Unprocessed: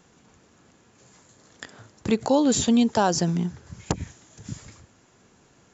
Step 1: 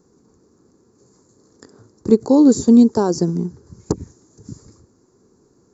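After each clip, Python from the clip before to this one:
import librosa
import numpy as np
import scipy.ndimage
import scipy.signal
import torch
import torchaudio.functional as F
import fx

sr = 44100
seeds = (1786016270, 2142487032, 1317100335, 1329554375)

y = fx.curve_eq(x, sr, hz=(160.0, 410.0, 650.0, 1100.0, 3100.0, 4500.0), db=(0, 8, -8, -3, -26, -3))
y = fx.upward_expand(y, sr, threshold_db=-27.0, expansion=1.5)
y = y * librosa.db_to_amplitude(6.5)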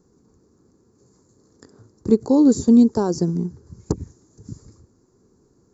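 y = fx.low_shelf(x, sr, hz=140.0, db=8.0)
y = y * librosa.db_to_amplitude(-4.5)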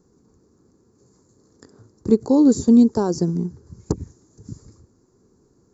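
y = x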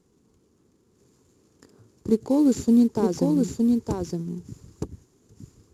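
y = fx.cvsd(x, sr, bps=64000)
y = y + 10.0 ** (-3.5 / 20.0) * np.pad(y, (int(915 * sr / 1000.0), 0))[:len(y)]
y = y * librosa.db_to_amplitude(-5.0)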